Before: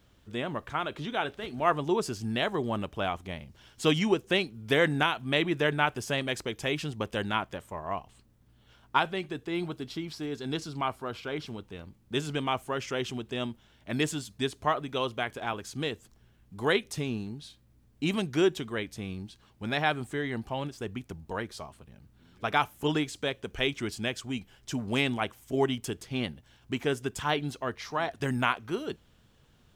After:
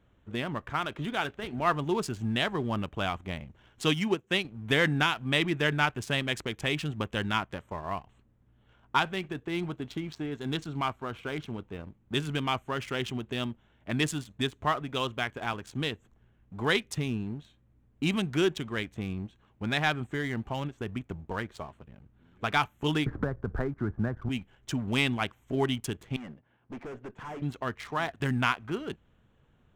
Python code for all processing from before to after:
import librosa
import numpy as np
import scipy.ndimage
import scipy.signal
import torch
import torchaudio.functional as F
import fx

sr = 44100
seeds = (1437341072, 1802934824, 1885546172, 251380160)

y = fx.chain(x, sr, fx.highpass(hz=100.0, slope=12),
    fx.upward_expand(threshold_db=-32.0, expansion=1.5), at=(3.84, 4.45))
y = fx.chain(y, sr, fx.steep_lowpass(hz=1600.0, slope=48),
    fx.low_shelf(hz=82.0, db=9.5),
    fx.band_squash(depth_pct=100), at=(23.06, 24.29))
y = fx.chain(y, sr, fx.bandpass_edges(low_hz=140.0, high_hz=2200.0),
    fx.tube_stage(drive_db=40.0, bias=0.45), at=(26.16, 27.42))
y = fx.wiener(y, sr, points=9)
y = fx.dynamic_eq(y, sr, hz=520.0, q=0.7, threshold_db=-41.0, ratio=4.0, max_db=-7)
y = fx.leveller(y, sr, passes=1)